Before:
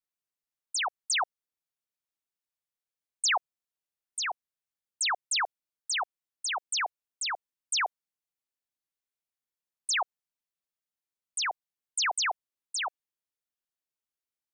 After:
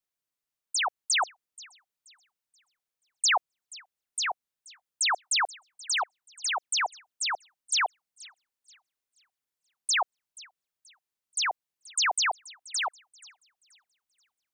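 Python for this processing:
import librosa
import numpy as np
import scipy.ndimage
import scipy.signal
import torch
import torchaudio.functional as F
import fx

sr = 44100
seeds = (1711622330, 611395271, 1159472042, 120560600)

y = fx.echo_wet_highpass(x, sr, ms=480, feedback_pct=32, hz=2500.0, wet_db=-20.0)
y = y * 10.0 ** (2.5 / 20.0)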